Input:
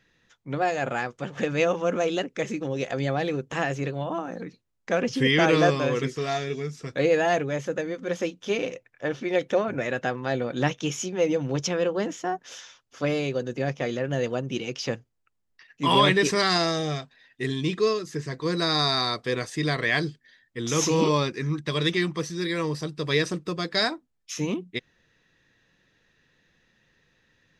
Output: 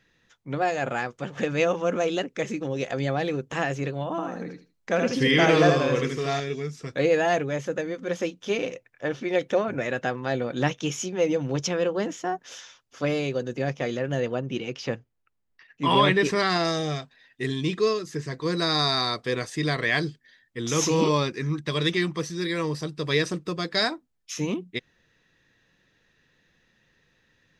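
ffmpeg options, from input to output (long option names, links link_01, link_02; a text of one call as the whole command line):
ffmpeg -i in.wav -filter_complex "[0:a]asettb=1/sr,asplit=3[link_01][link_02][link_03];[link_01]atrim=end=4.104[link_04];[link_02]atrim=start=4.1:end=6.4,asetpts=PTS-STARTPTS,afade=type=in:duration=0.004:curve=qsin,afade=type=out:start_time=2.296:duration=0.004:curve=qsin,aecho=1:1:79|158|237:0.562|0.101|0.0182,atrim=end_sample=101430[link_05];[link_03]atrim=start=6.396[link_06];[link_04][link_05]acrossfade=duration=0.004:curve1=hsin:curve2=qsin[link_07];[link_07][link_06]acrossfade=duration=0.004:curve1=qsin:curve2=hsin,asettb=1/sr,asplit=3[link_08][link_09][link_10];[link_08]atrim=end=14.204[link_11];[link_09]atrim=start=14.2:end=16.65,asetpts=PTS-STARTPTS,afade=type=in:duration=0.004:curve=qsin,afade=type=out:start_time=2.446:duration=0.004:curve=qsin,bass=frequency=250:gain=0,treble=frequency=4000:gain=-8[link_12];[link_10]atrim=start=16.646[link_13];[link_11][link_12]acrossfade=duration=0.004:curve1=hsin:curve2=qsin[link_14];[link_14][link_13]acrossfade=duration=0.004:curve1=qsin:curve2=hsin" out.wav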